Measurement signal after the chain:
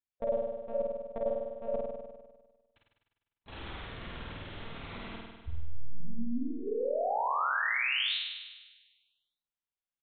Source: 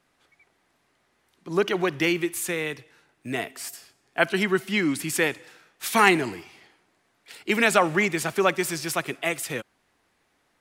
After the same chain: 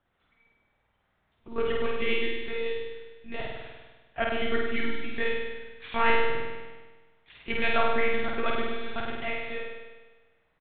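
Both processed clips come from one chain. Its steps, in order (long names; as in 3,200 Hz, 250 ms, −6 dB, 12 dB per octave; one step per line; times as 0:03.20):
spectral magnitudes quantised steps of 15 dB
double-tracking delay 29 ms −13 dB
one-pitch LPC vocoder at 8 kHz 230 Hz
on a send: flutter between parallel walls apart 8.6 metres, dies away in 1.3 s
on the sum: level −7 dB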